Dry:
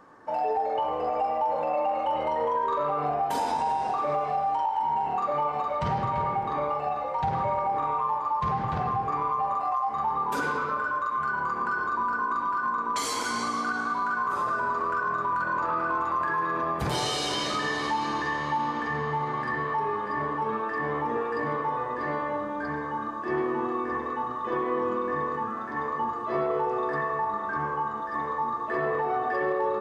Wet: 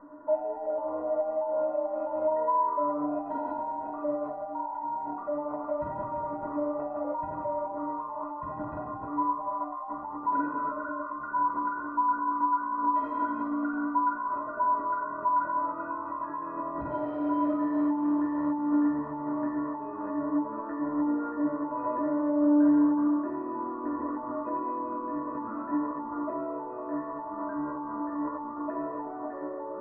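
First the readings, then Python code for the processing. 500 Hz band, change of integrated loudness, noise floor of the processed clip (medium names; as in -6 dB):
-2.0 dB, -2.5 dB, -38 dBFS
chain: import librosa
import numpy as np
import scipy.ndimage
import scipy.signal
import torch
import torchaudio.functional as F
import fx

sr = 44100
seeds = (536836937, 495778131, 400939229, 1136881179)

p1 = fx.over_compress(x, sr, threshold_db=-32.0, ratio=-0.5)
p2 = x + (p1 * 10.0 ** (1.5 / 20.0))
p3 = scipy.signal.sosfilt(scipy.signal.butter(4, 1300.0, 'lowpass', fs=sr, output='sos'), p2)
p4 = fx.stiff_resonator(p3, sr, f0_hz=290.0, decay_s=0.21, stiffness=0.03)
y = p4 * 10.0 ** (8.0 / 20.0)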